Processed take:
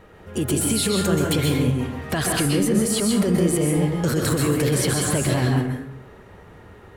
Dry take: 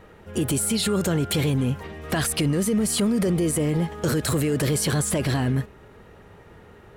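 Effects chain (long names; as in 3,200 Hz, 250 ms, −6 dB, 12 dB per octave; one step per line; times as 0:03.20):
dense smooth reverb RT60 0.65 s, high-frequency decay 0.65×, pre-delay 115 ms, DRR 0 dB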